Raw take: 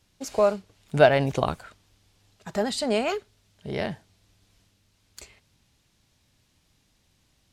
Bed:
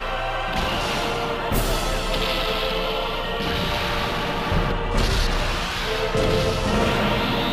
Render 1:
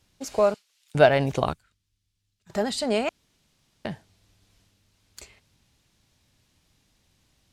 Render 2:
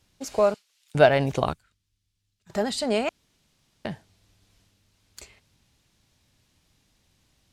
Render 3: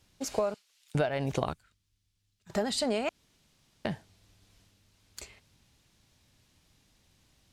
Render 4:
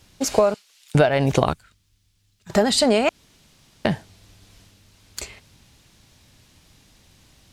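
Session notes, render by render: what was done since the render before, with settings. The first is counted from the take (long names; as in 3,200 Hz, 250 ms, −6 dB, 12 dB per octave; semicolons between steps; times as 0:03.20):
0:00.54–0:00.95: Bessel high-pass filter 3,000 Hz; 0:01.53–0:02.50: guitar amp tone stack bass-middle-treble 6-0-2; 0:03.09–0:03.85: fill with room tone
no processing that can be heard
downward compressor 16 to 1, threshold −25 dBFS, peak gain reduction 15.5 dB
level +12 dB; brickwall limiter −2 dBFS, peak gain reduction 1 dB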